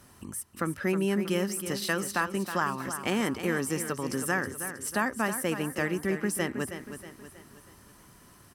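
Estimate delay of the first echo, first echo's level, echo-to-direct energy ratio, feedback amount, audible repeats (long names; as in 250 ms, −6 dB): 319 ms, −10.0 dB, −9.0 dB, 46%, 4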